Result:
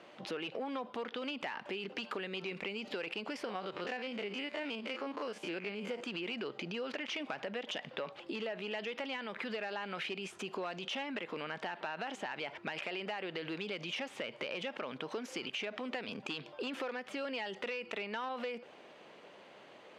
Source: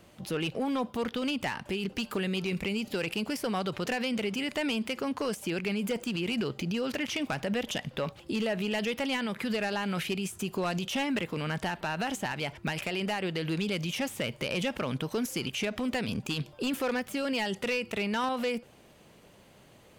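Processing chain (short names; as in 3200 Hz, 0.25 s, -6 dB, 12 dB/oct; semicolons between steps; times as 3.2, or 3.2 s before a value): 3.45–6.03 stepped spectrum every 50 ms; LPF 3400 Hz 12 dB/oct; limiter -29.5 dBFS, peak gain reduction 6.5 dB; HPF 380 Hz 12 dB/oct; compressor, threshold -40 dBFS, peak gain reduction 8 dB; gain +4.5 dB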